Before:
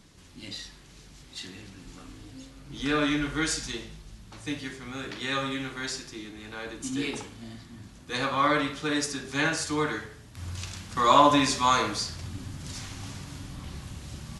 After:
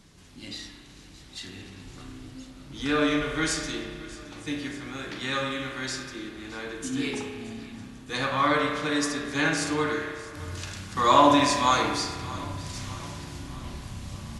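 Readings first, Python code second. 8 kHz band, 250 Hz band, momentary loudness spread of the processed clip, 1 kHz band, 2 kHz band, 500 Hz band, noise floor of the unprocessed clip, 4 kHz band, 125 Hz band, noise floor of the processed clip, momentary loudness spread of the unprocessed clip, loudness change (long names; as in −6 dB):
0.0 dB, +2.0 dB, 20 LU, +1.0 dB, +1.5 dB, +2.5 dB, −51 dBFS, +0.5 dB, +1.0 dB, −49 dBFS, 22 LU, +1.0 dB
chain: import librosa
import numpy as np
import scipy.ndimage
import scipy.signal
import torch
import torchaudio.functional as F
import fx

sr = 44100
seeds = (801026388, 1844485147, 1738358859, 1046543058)

y = fx.echo_feedback(x, sr, ms=618, feedback_pct=54, wet_db=-18.5)
y = fx.rev_spring(y, sr, rt60_s=1.9, pass_ms=(31,), chirp_ms=45, drr_db=4.0)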